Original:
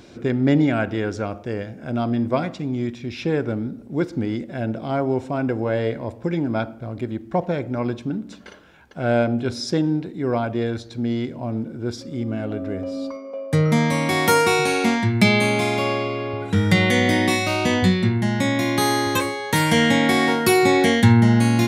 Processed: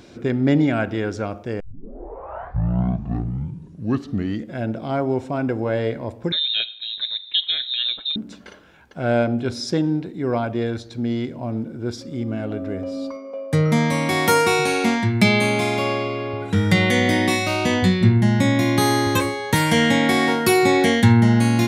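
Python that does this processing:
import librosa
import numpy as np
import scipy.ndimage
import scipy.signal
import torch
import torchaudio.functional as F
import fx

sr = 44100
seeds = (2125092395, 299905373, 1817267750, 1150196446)

y = fx.freq_invert(x, sr, carrier_hz=3900, at=(6.32, 8.16))
y = fx.low_shelf(y, sr, hz=210.0, db=8.0, at=(18.01, 19.55))
y = fx.edit(y, sr, fx.tape_start(start_s=1.6, length_s=3.01), tone=tone)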